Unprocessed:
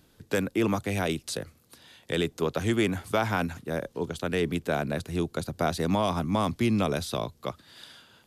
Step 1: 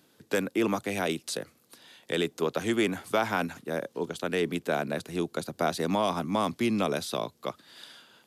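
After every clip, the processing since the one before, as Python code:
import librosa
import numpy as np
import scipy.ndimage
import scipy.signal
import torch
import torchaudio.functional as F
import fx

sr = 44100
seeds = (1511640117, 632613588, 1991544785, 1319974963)

y = scipy.signal.sosfilt(scipy.signal.butter(2, 200.0, 'highpass', fs=sr, output='sos'), x)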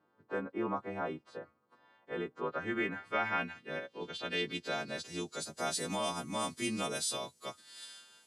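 y = fx.freq_snap(x, sr, grid_st=2)
y = fx.filter_sweep_lowpass(y, sr, from_hz=1100.0, to_hz=8700.0, start_s=2.04, end_s=5.78, q=1.9)
y = y * librosa.db_to_amplitude(-9.0)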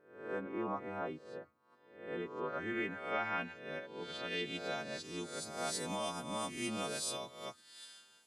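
y = fx.spec_swells(x, sr, rise_s=0.63)
y = y * librosa.db_to_amplitude(-4.5)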